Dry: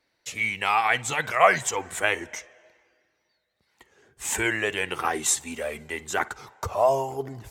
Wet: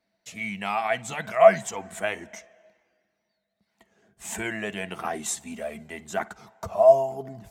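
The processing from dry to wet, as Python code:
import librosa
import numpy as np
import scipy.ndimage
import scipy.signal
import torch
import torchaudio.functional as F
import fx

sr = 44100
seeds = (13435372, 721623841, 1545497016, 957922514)

y = fx.small_body(x, sr, hz=(200.0, 660.0), ring_ms=100, db=18)
y = y * librosa.db_to_amplitude(-7.0)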